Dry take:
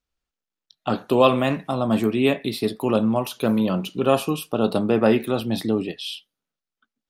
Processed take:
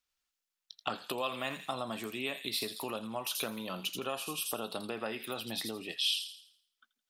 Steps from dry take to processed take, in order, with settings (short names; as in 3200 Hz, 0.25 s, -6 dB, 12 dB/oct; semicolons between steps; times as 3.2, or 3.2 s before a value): thin delay 83 ms, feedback 42%, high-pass 4700 Hz, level -3.5 dB; compressor 6:1, threshold -27 dBFS, peak gain reduction 15.5 dB; tilt shelf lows -8.5 dB, about 670 Hz; gain -5.5 dB